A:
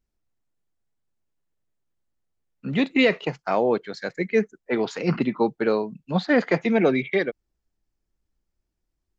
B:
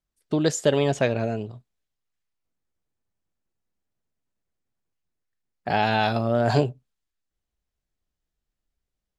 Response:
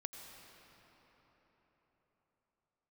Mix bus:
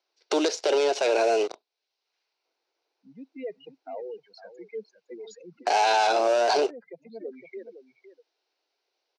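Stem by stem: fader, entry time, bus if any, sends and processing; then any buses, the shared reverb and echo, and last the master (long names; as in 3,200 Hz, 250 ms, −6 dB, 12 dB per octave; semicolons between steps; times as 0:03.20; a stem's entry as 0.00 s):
−10.5 dB, 0.40 s, no send, echo send −13 dB, expanding power law on the bin magnitudes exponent 2.5; reverb reduction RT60 1.9 s; automatic ducking −7 dB, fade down 0.25 s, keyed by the second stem
+2.0 dB, 0.00 s, no send, no echo send, elliptic band-pass filter 350–4,400 Hz, stop band 40 dB; leveller curve on the samples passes 3; multiband upward and downward compressor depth 70%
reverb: not used
echo: single-tap delay 509 ms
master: loudspeaker in its box 480–8,800 Hz, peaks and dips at 590 Hz −3 dB, 1,200 Hz −9 dB, 1,800 Hz −10 dB, 3,300 Hz −6 dB, 5,800 Hz +8 dB; brickwall limiter −14 dBFS, peak gain reduction 8 dB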